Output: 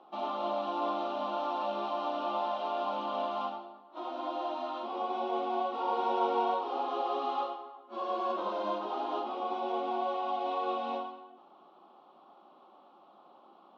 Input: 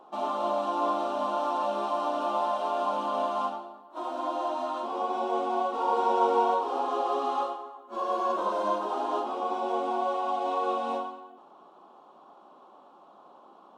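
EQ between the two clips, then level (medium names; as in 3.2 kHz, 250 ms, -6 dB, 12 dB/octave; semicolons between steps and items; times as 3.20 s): cabinet simulation 190–4400 Hz, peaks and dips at 270 Hz -4 dB, 450 Hz -7 dB, 630 Hz -4 dB, 1 kHz -7 dB, 1.6 kHz -7 dB; 0.0 dB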